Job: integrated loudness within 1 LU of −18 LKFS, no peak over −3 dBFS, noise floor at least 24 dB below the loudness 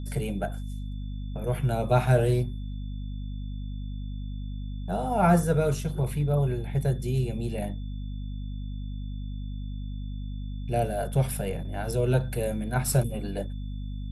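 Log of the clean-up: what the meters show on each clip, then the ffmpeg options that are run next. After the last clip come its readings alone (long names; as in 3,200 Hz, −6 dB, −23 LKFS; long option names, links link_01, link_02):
mains hum 50 Hz; hum harmonics up to 250 Hz; level of the hum −31 dBFS; interfering tone 3,500 Hz; level of the tone −57 dBFS; integrated loudness −29.0 LKFS; sample peak −8.5 dBFS; target loudness −18.0 LKFS
→ -af "bandreject=frequency=50:width_type=h:width=6,bandreject=frequency=100:width_type=h:width=6,bandreject=frequency=150:width_type=h:width=6,bandreject=frequency=200:width_type=h:width=6,bandreject=frequency=250:width_type=h:width=6"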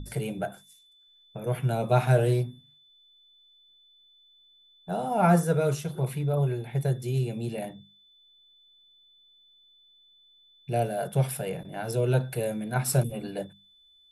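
mains hum none found; interfering tone 3,500 Hz; level of the tone −57 dBFS
→ -af "bandreject=frequency=3500:width=30"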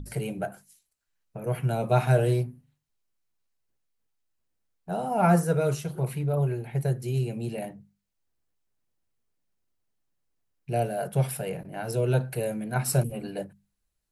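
interfering tone none found; integrated loudness −28.0 LKFS; sample peak −9.0 dBFS; target loudness −18.0 LKFS
→ -af "volume=10dB,alimiter=limit=-3dB:level=0:latency=1"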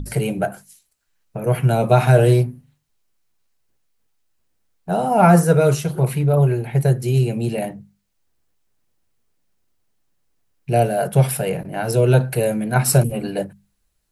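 integrated loudness −18.0 LKFS; sample peak −3.0 dBFS; background noise floor −69 dBFS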